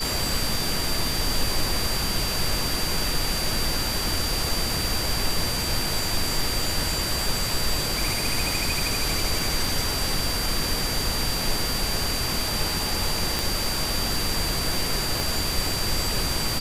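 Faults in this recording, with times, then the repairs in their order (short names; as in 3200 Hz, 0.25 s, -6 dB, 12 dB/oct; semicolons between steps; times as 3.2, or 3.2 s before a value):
tone 4700 Hz -29 dBFS
13.39 pop
15.2 pop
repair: de-click; notch 4700 Hz, Q 30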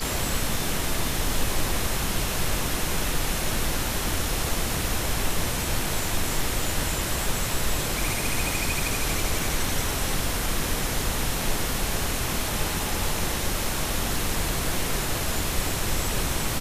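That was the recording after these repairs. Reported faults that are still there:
15.2 pop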